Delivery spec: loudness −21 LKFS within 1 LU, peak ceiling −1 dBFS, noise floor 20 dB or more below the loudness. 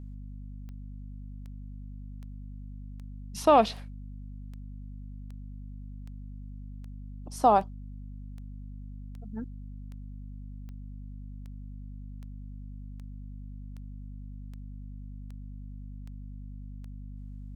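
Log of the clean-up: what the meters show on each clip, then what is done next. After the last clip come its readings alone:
number of clicks 22; mains hum 50 Hz; hum harmonics up to 250 Hz; level of the hum −39 dBFS; integrated loudness −35.5 LKFS; sample peak −8.5 dBFS; target loudness −21.0 LKFS
→ click removal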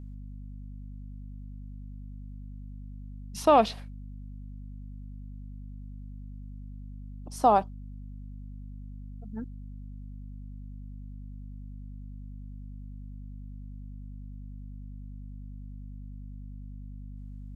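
number of clicks 0; mains hum 50 Hz; hum harmonics up to 250 Hz; level of the hum −39 dBFS
→ mains-hum notches 50/100/150/200/250 Hz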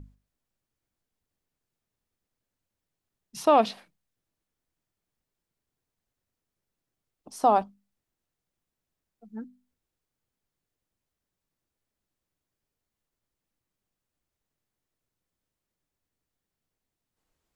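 mains hum none found; integrated loudness −24.0 LKFS; sample peak −8.0 dBFS; target loudness −21.0 LKFS
→ level +3 dB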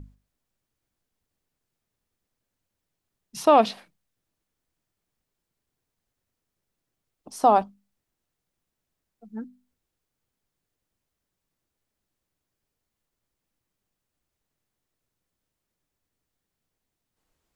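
integrated loudness −21.0 LKFS; sample peak −5.0 dBFS; background noise floor −84 dBFS

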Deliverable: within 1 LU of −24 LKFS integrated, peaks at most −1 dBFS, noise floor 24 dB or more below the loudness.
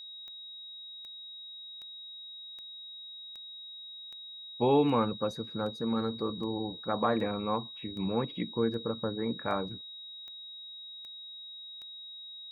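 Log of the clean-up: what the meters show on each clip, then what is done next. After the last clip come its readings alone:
number of clicks 16; interfering tone 3,800 Hz; level of the tone −43 dBFS; integrated loudness −34.5 LKFS; sample peak −14.0 dBFS; target loudness −24.0 LKFS
→ click removal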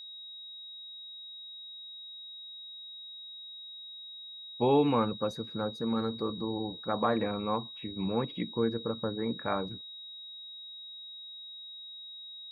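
number of clicks 0; interfering tone 3,800 Hz; level of the tone −43 dBFS
→ notch filter 3,800 Hz, Q 30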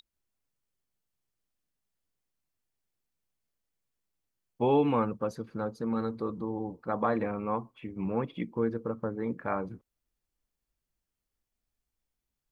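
interfering tone none found; integrated loudness −32.0 LKFS; sample peak −14.0 dBFS; target loudness −24.0 LKFS
→ level +8 dB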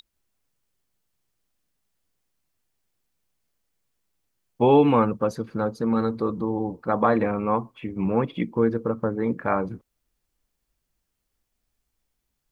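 integrated loudness −24.0 LKFS; sample peak −6.0 dBFS; background noise floor −79 dBFS

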